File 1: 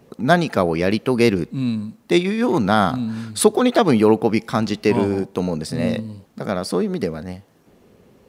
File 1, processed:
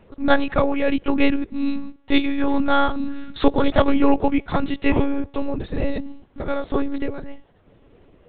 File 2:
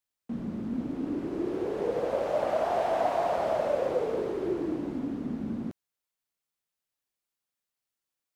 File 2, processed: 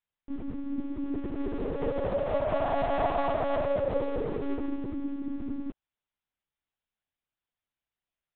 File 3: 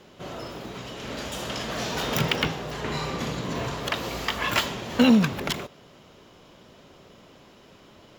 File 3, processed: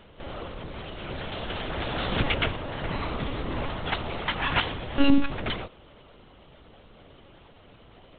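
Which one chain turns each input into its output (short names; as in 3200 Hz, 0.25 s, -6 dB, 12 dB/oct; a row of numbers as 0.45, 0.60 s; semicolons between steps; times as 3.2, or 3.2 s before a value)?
monotone LPC vocoder at 8 kHz 280 Hz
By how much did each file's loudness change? -3.0, -1.0, -2.5 LU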